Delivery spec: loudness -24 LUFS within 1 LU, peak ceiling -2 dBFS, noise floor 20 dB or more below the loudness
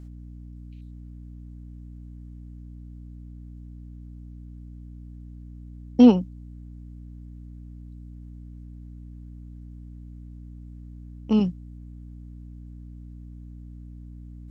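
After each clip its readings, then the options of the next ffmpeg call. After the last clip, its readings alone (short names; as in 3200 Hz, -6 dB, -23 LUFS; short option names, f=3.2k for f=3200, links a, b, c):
hum 60 Hz; harmonics up to 300 Hz; hum level -39 dBFS; loudness -20.0 LUFS; peak -4.0 dBFS; loudness target -24.0 LUFS
-> -af "bandreject=f=60:t=h:w=6,bandreject=f=120:t=h:w=6,bandreject=f=180:t=h:w=6,bandreject=f=240:t=h:w=6,bandreject=f=300:t=h:w=6"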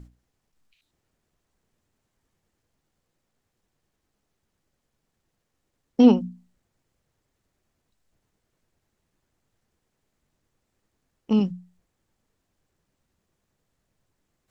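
hum none; loudness -21.0 LUFS; peak -5.0 dBFS; loudness target -24.0 LUFS
-> -af "volume=-3dB"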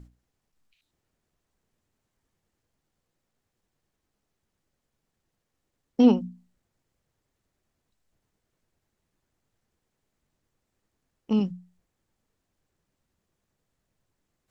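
loudness -23.5 LUFS; peak -8.0 dBFS; noise floor -81 dBFS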